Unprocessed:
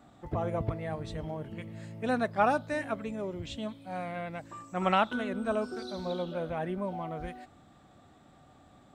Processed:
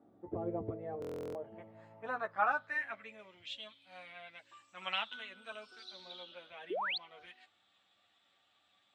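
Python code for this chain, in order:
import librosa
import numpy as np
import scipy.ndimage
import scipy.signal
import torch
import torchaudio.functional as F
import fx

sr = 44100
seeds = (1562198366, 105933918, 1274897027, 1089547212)

y = fx.chorus_voices(x, sr, voices=6, hz=0.58, base_ms=10, depth_ms=1.3, mix_pct=40)
y = fx.filter_sweep_bandpass(y, sr, from_hz=370.0, to_hz=3100.0, start_s=0.71, end_s=3.51, q=2.2)
y = fx.spec_paint(y, sr, seeds[0], shape='rise', start_s=6.7, length_s=0.28, low_hz=320.0, high_hz=4700.0, level_db=-40.0)
y = fx.buffer_glitch(y, sr, at_s=(1.0,), block=1024, repeats=14)
y = y * librosa.db_to_amplitude(4.0)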